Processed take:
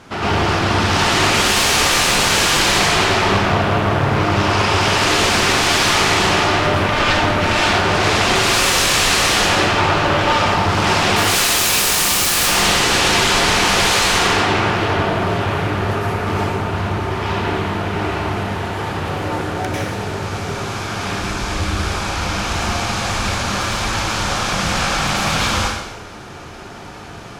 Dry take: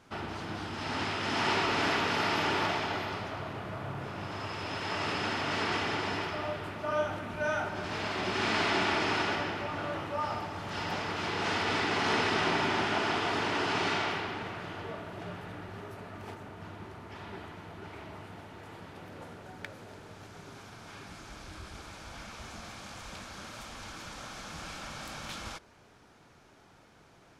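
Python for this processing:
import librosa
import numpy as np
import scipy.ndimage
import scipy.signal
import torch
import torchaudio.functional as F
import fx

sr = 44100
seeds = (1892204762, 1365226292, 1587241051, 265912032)

y = fx.weighting(x, sr, curve='ITU-R 468', at=(11.16, 12.36))
y = fx.fold_sine(y, sr, drive_db=20, ceiling_db=-12.5)
y = fx.rev_plate(y, sr, seeds[0], rt60_s=0.9, hf_ratio=1.0, predelay_ms=85, drr_db=-7.5)
y = fx.doppler_dist(y, sr, depth_ms=0.37)
y = y * librosa.db_to_amplitude(-7.5)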